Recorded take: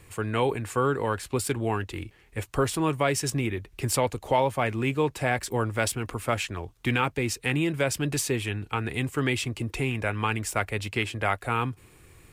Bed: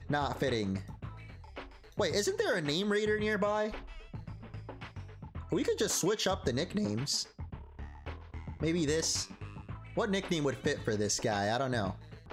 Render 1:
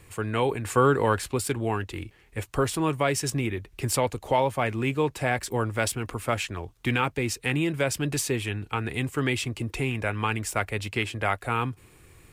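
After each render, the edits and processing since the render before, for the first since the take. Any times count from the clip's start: 0.65–1.32 s: gain +4.5 dB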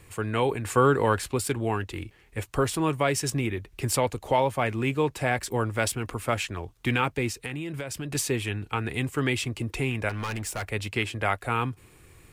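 7.28–8.15 s: compression, threshold -30 dBFS; 10.09–10.69 s: hard clipper -28 dBFS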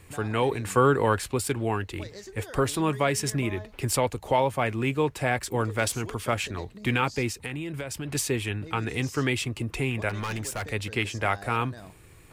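add bed -12.5 dB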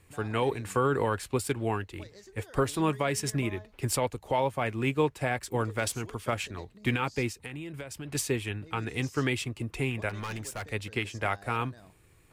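peak limiter -15 dBFS, peak gain reduction 6 dB; upward expansion 1.5:1, over -39 dBFS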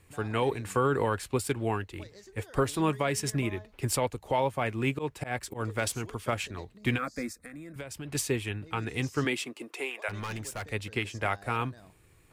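4.26–5.66 s: slow attack 117 ms; 6.98–7.76 s: static phaser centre 590 Hz, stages 8; 9.24–10.08 s: high-pass 160 Hz -> 550 Hz 24 dB/octave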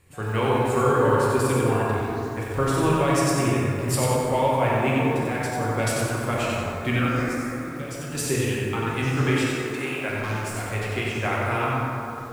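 plate-style reverb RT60 3.2 s, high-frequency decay 0.35×, DRR -5 dB; bit-crushed delay 92 ms, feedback 35%, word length 8-bit, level -4 dB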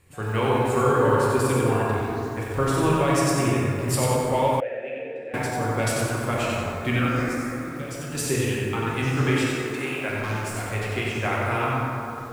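4.60–5.34 s: vowel filter e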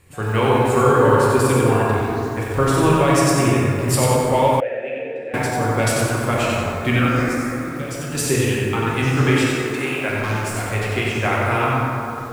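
trim +5.5 dB

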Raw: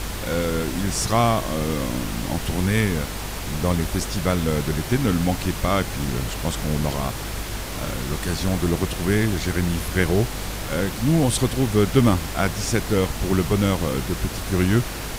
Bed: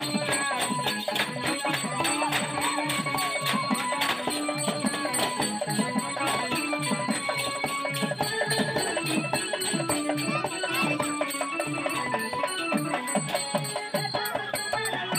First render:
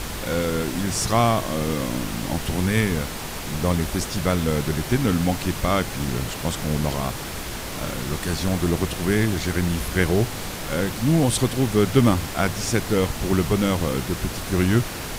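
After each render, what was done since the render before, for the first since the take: de-hum 50 Hz, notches 2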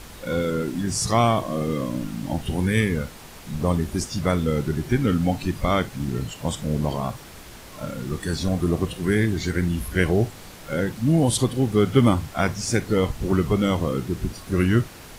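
noise print and reduce 11 dB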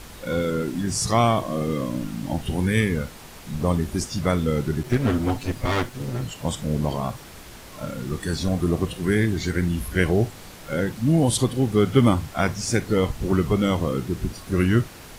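4.83–6.24 s: comb filter that takes the minimum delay 8 ms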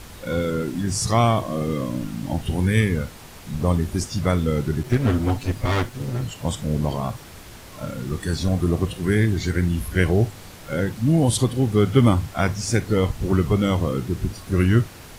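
peaking EQ 97 Hz +5 dB 0.79 oct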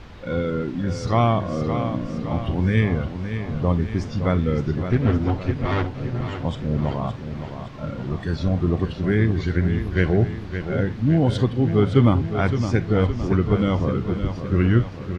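distance through air 220 m; feedback delay 565 ms, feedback 54%, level -9 dB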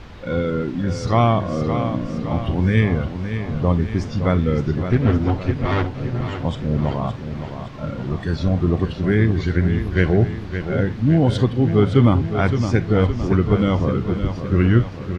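trim +2.5 dB; peak limiter -3 dBFS, peak gain reduction 2 dB

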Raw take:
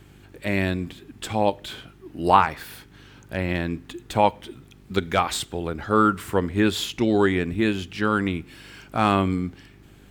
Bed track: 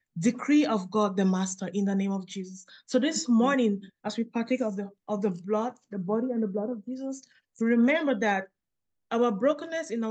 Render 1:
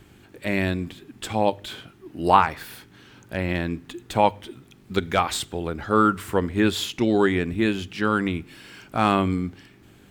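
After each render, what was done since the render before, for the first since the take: de-hum 50 Hz, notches 3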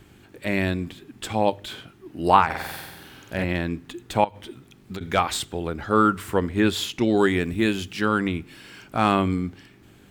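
2.45–3.44 s: flutter echo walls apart 8.1 m, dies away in 1.2 s; 4.24–5.01 s: compression 12:1, threshold -29 dBFS; 7.17–8.05 s: treble shelf 5.7 kHz +8.5 dB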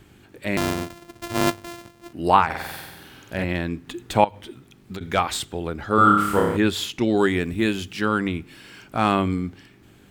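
0.57–2.13 s: sorted samples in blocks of 128 samples; 3.87–4.35 s: gain +3 dB; 5.95–6.57 s: flutter echo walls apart 5 m, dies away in 0.89 s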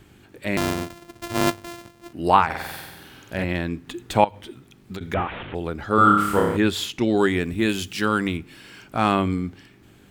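5.14–5.55 s: one-bit delta coder 16 kbps, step -30 dBFS; 7.69–8.37 s: treble shelf 4.1 kHz +8 dB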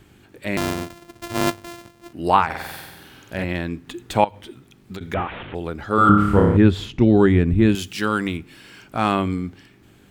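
6.09–7.75 s: RIAA curve playback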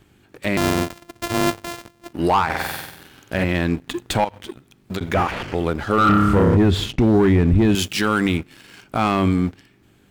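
waveshaping leveller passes 2; peak limiter -9.5 dBFS, peak gain reduction 8 dB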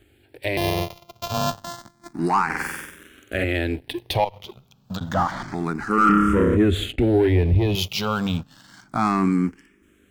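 barber-pole phaser +0.29 Hz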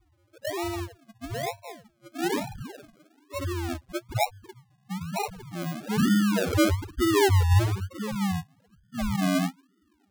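loudest bins only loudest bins 2; decimation with a swept rate 38×, swing 60% 1.1 Hz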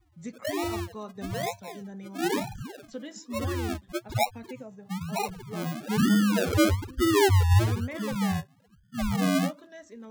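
add bed track -14.5 dB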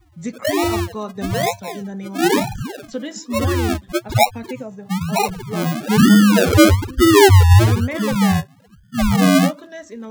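trim +11.5 dB; peak limiter -3 dBFS, peak gain reduction 2.5 dB

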